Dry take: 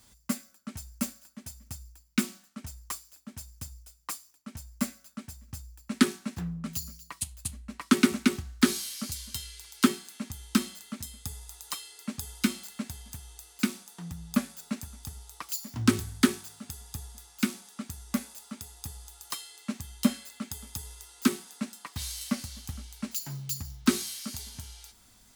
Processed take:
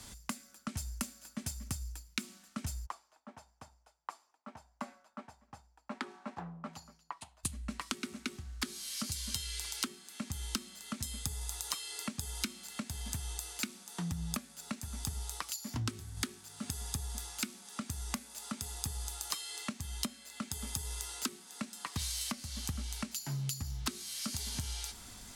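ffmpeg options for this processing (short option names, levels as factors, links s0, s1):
-filter_complex "[0:a]asplit=3[s0][s1][s2];[s0]afade=t=out:st=2.85:d=0.02[s3];[s1]bandpass=f=830:t=q:w=2.4,afade=t=in:st=2.85:d=0.02,afade=t=out:st=7.43:d=0.02[s4];[s2]afade=t=in:st=7.43:d=0.02[s5];[s3][s4][s5]amix=inputs=3:normalize=0,asplit=3[s6][s7][s8];[s6]atrim=end=15.502[s9];[s7]atrim=start=15.498:end=16.172,asetpts=PTS-STARTPTS,volume=0.668[s10];[s8]atrim=start=16.168[s11];[s9][s10]acrossfade=d=0.004:c1=hsin:c2=hsin[s12];[s12][s11]acrossfade=d=0.004:c1=hsin:c2=hsin,acompressor=threshold=0.00794:ratio=12,lowpass=12000,acrossover=split=130|3000[s13][s14][s15];[s14]acompressor=threshold=0.00501:ratio=6[s16];[s13][s16][s15]amix=inputs=3:normalize=0,volume=2.99"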